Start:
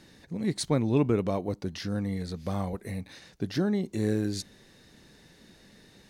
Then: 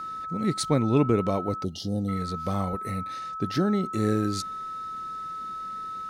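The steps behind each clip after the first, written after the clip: whistle 1.3 kHz -35 dBFS; time-frequency box 1.64–2.08 s, 870–2800 Hz -28 dB; trim +2.5 dB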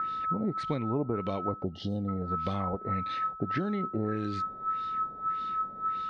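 compression 6:1, threshold -28 dBFS, peak gain reduction 11.5 dB; LFO low-pass sine 1.7 Hz 680–3600 Hz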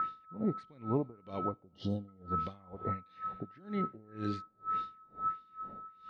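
reverberation RT60 2.7 s, pre-delay 62 ms, DRR 19 dB; logarithmic tremolo 2.1 Hz, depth 28 dB

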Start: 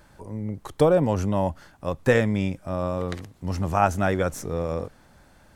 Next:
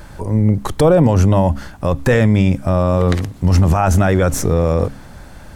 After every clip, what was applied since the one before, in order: bass shelf 140 Hz +7.5 dB; de-hum 68.27 Hz, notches 4; loudness maximiser +17 dB; trim -3 dB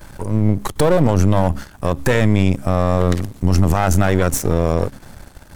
partial rectifier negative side -12 dB; treble shelf 7.1 kHz +7.5 dB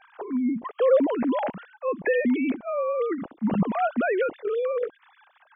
formants replaced by sine waves; trim -9 dB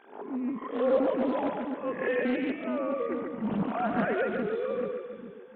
reverse spectral sustain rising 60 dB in 0.48 s; two-band feedback delay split 350 Hz, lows 419 ms, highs 142 ms, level -3.5 dB; loudspeaker Doppler distortion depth 0.31 ms; trim -7.5 dB

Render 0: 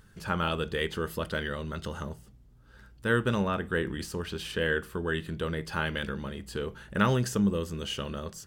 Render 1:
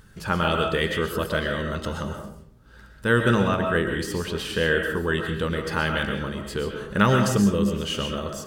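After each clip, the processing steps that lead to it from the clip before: reverberation RT60 0.60 s, pre-delay 85 ms, DRR 3.5 dB; trim +5.5 dB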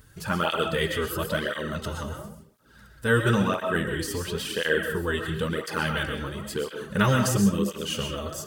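treble shelf 7.3 kHz +10 dB; cancelling through-zero flanger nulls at 0.97 Hz, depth 6 ms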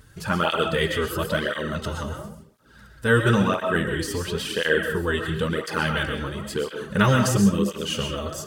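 treble shelf 12 kHz -8.5 dB; trim +3 dB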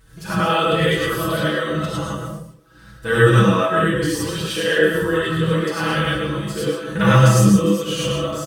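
comb 6.1 ms, depth 78%; gated-style reverb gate 130 ms rising, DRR -6.5 dB; trim -5 dB

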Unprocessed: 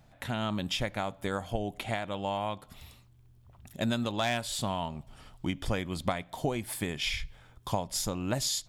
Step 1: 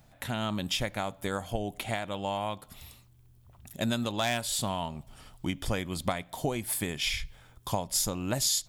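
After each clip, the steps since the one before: treble shelf 7 kHz +9.5 dB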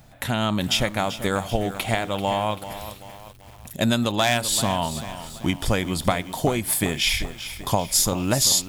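bit-crushed delay 388 ms, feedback 55%, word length 8-bit, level -12 dB; trim +8.5 dB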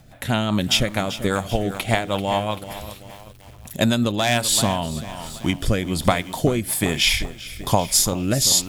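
rotary cabinet horn 5 Hz, later 1.2 Hz, at 3.01 s; trim +4 dB

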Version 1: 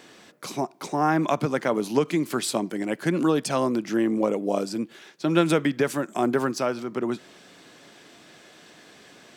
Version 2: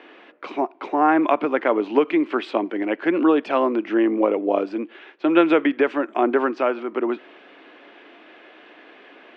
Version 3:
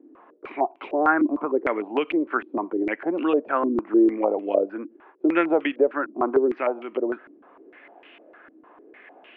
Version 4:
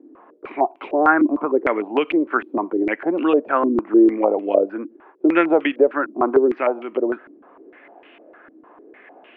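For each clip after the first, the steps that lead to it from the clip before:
Chebyshev band-pass 290–2800 Hz, order 3; trim +5.5 dB
step-sequenced low-pass 6.6 Hz 290–2800 Hz; trim -7 dB
tape noise reduction on one side only decoder only; trim +4.5 dB

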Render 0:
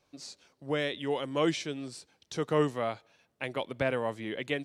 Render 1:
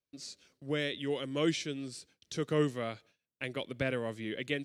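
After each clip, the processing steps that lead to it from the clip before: gate with hold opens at -53 dBFS; peaking EQ 860 Hz -12 dB 1 oct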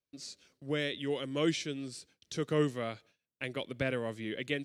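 no audible change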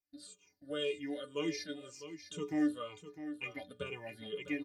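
drifting ripple filter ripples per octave 0.73, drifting -2 Hz, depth 21 dB; inharmonic resonator 88 Hz, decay 0.32 s, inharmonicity 0.03; delay 654 ms -11.5 dB

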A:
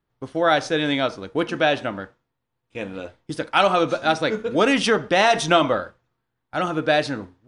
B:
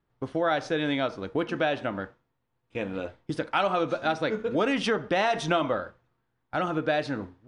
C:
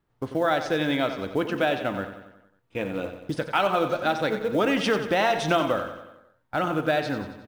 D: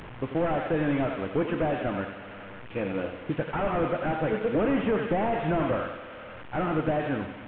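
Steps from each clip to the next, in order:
treble shelf 5.2 kHz -11.5 dB; compression 2:1, threshold -30 dBFS, peak gain reduction 10 dB; trim +1.5 dB
on a send: feedback delay 91 ms, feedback 55%, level -10 dB; on the sum: short-mantissa float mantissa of 4-bit; trim +2 dB
one-bit delta coder 16 kbps, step -36 dBFS

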